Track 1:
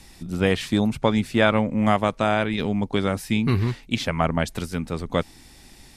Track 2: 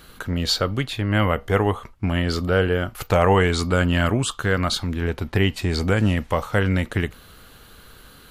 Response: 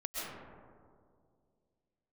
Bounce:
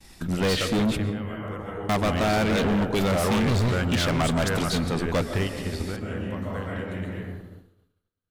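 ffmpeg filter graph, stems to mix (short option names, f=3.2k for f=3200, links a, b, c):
-filter_complex "[0:a]volume=2dB,asplit=3[a][b][c];[a]atrim=end=1,asetpts=PTS-STARTPTS,afade=t=out:st=0.996:d=0.004:c=hsin[d];[b]atrim=start=1:end=1.89,asetpts=PTS-STARTPTS,volume=0[e];[c]atrim=start=1.89,asetpts=PTS-STARTPTS,afade=t=in:d=0.004:c=hsin[f];[d][e][f]concat=n=3:v=0:a=1,asplit=3[g][h][i];[h]volume=-17dB[j];[1:a]volume=-8.5dB,asplit=2[k][l];[l]volume=-11dB[m];[i]apad=whole_len=366107[n];[k][n]sidechaingate=range=-33dB:threshold=-43dB:ratio=16:detection=peak[o];[2:a]atrim=start_sample=2205[p];[j][m]amix=inputs=2:normalize=0[q];[q][p]afir=irnorm=-1:irlink=0[r];[g][o][r]amix=inputs=3:normalize=0,agate=range=-33dB:threshold=-40dB:ratio=3:detection=peak,dynaudnorm=f=190:g=9:m=5.5dB,volume=20dB,asoftclip=hard,volume=-20dB"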